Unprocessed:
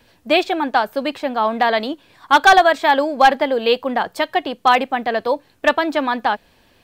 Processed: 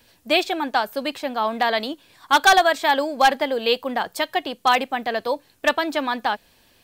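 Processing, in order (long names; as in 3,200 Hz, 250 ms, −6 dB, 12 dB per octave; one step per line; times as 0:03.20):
high-shelf EQ 4,000 Hz +11 dB
level −5 dB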